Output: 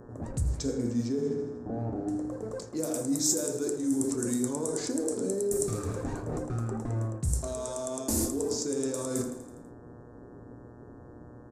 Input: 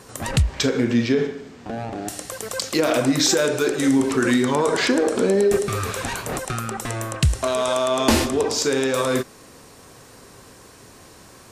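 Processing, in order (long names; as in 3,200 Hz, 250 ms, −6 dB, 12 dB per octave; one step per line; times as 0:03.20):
low-pass that shuts in the quiet parts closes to 620 Hz, open at −14.5 dBFS
mains-hum notches 50/100/150/200/250/300 Hz
repeating echo 82 ms, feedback 60%, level −17.5 dB
convolution reverb RT60 0.60 s, pre-delay 3 ms, DRR 7.5 dB
reversed playback
downward compressor 6 to 1, threshold −26 dBFS, peak gain reduction 15 dB
reversed playback
high-shelf EQ 2,400 Hz +8 dB
hum with harmonics 120 Hz, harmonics 15, −47 dBFS 0 dB per octave
drawn EQ curve 250 Hz 0 dB, 400 Hz −2 dB, 3,000 Hz −25 dB, 7,300 Hz +2 dB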